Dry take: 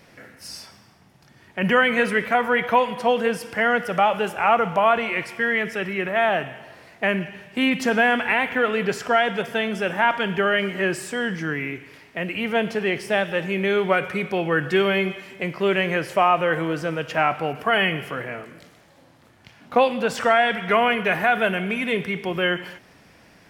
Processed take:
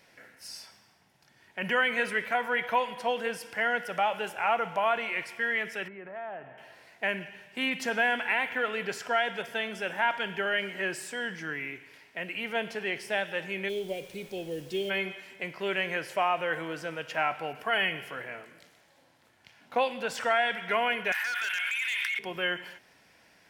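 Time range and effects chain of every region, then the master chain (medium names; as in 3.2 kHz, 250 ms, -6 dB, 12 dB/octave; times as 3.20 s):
5.88–6.58 s: low-pass 1.2 kHz + compression 2:1, threshold -33 dBFS
13.68–14.89 s: block-companded coder 7-bit + Chebyshev band-stop 480–3600 Hz + added noise pink -48 dBFS
21.12–22.19 s: high-pass 1.3 kHz 24 dB/octave + overload inside the chain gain 23 dB + level flattener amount 100%
whole clip: bass shelf 440 Hz -11 dB; band-stop 1.2 kHz, Q 8.8; trim -5.5 dB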